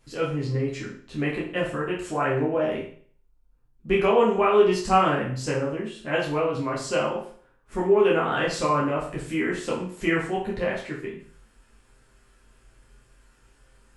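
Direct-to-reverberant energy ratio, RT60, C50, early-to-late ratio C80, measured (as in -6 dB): -5.5 dB, 0.50 s, 5.5 dB, 10.0 dB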